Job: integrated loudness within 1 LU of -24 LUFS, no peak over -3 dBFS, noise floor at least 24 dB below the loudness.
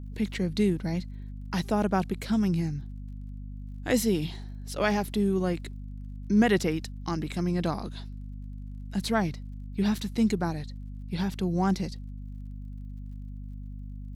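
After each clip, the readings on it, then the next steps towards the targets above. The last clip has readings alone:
tick rate 35 per s; hum 50 Hz; highest harmonic 250 Hz; hum level -36 dBFS; loudness -28.5 LUFS; peak level -10.5 dBFS; loudness target -24.0 LUFS
-> de-click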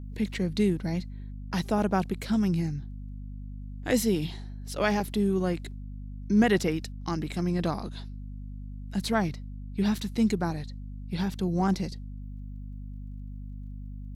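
tick rate 0.21 per s; hum 50 Hz; highest harmonic 250 Hz; hum level -36 dBFS
-> hum notches 50/100/150/200/250 Hz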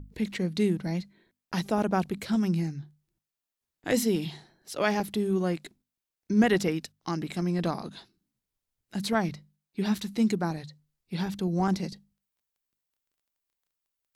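hum not found; loudness -29.0 LUFS; peak level -11.0 dBFS; loudness target -24.0 LUFS
-> trim +5 dB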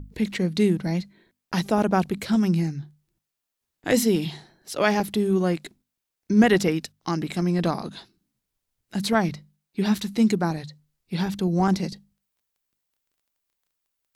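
loudness -24.0 LUFS; peak level -6.0 dBFS; noise floor -84 dBFS

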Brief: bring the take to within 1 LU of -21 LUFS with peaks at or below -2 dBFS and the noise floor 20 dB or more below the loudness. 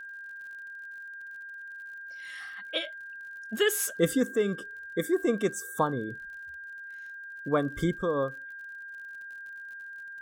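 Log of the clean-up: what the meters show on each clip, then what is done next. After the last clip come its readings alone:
tick rate 51 per s; steady tone 1.6 kHz; tone level -40 dBFS; loudness -32.5 LUFS; peak level -12.0 dBFS; loudness target -21.0 LUFS
-> de-click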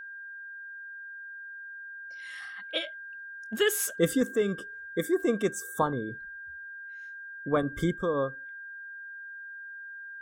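tick rate 0 per s; steady tone 1.6 kHz; tone level -40 dBFS
-> band-stop 1.6 kHz, Q 30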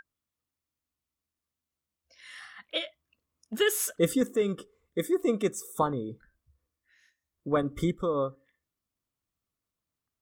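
steady tone not found; loudness -29.5 LUFS; peak level -12.0 dBFS; loudness target -21.0 LUFS
-> trim +8.5 dB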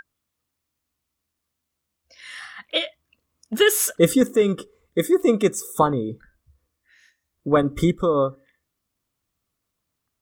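loudness -21.0 LUFS; peak level -3.5 dBFS; noise floor -81 dBFS

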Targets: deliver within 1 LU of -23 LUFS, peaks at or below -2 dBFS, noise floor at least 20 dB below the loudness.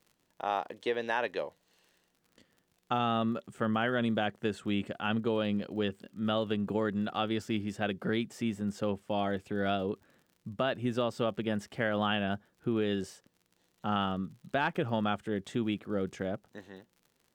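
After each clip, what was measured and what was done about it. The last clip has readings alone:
tick rate 53 per s; loudness -33.0 LUFS; peak level -16.5 dBFS; loudness target -23.0 LUFS
-> de-click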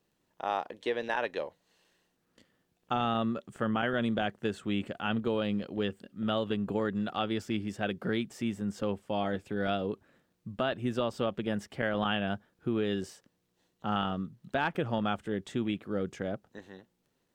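tick rate 0.46 per s; loudness -33.0 LUFS; peak level -16.5 dBFS; loudness target -23.0 LUFS
-> trim +10 dB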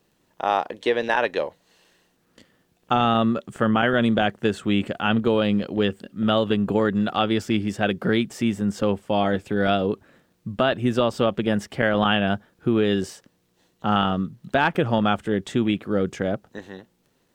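loudness -23.0 LUFS; peak level -6.5 dBFS; noise floor -67 dBFS

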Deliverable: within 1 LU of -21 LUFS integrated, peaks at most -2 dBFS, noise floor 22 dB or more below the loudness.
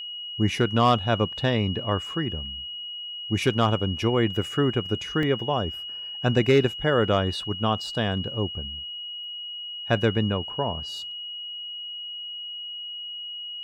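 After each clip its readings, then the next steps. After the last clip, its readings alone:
dropouts 1; longest dropout 1.2 ms; steady tone 2.9 kHz; tone level -33 dBFS; loudness -26.0 LUFS; peak level -9.5 dBFS; loudness target -21.0 LUFS
-> interpolate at 5.23 s, 1.2 ms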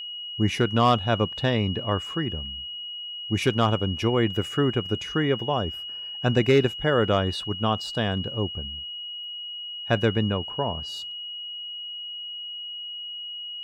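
dropouts 0; steady tone 2.9 kHz; tone level -33 dBFS
-> band-stop 2.9 kHz, Q 30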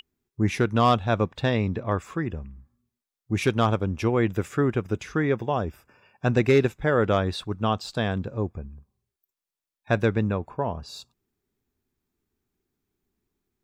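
steady tone not found; loudness -25.5 LUFS; peak level -9.5 dBFS; loudness target -21.0 LUFS
-> trim +4.5 dB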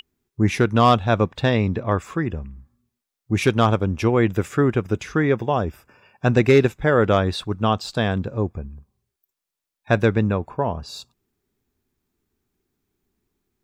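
loudness -21.0 LUFS; peak level -5.0 dBFS; noise floor -85 dBFS

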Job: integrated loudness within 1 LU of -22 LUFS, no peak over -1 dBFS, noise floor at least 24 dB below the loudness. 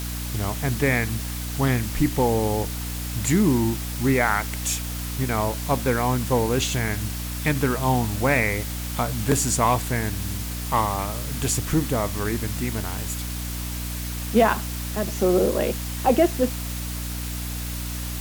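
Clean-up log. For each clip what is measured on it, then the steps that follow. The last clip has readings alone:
hum 60 Hz; highest harmonic 300 Hz; hum level -29 dBFS; noise floor -30 dBFS; noise floor target -48 dBFS; loudness -24.0 LUFS; peak level -6.5 dBFS; loudness target -22.0 LUFS
-> hum notches 60/120/180/240/300 Hz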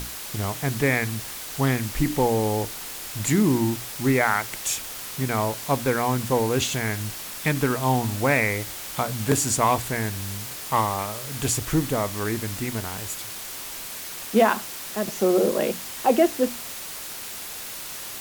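hum not found; noise floor -36 dBFS; noise floor target -49 dBFS
-> noise reduction 13 dB, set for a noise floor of -36 dBFS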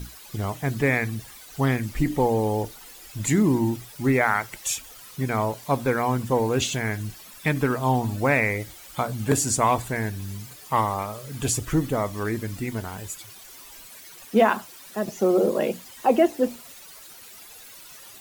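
noise floor -45 dBFS; noise floor target -49 dBFS
-> noise reduction 6 dB, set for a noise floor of -45 dBFS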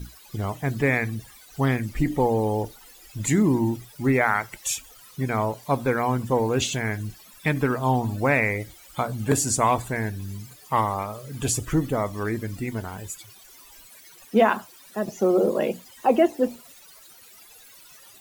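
noise floor -50 dBFS; loudness -24.5 LUFS; peak level -6.5 dBFS; loudness target -22.0 LUFS
-> trim +2.5 dB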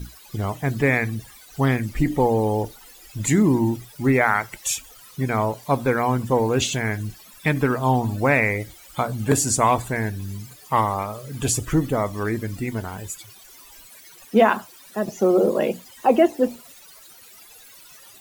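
loudness -22.0 LUFS; peak level -4.0 dBFS; noise floor -47 dBFS

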